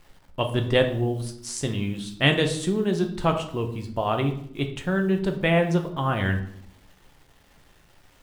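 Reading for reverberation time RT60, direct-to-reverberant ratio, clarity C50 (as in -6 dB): 0.65 s, 4.5 dB, 10.0 dB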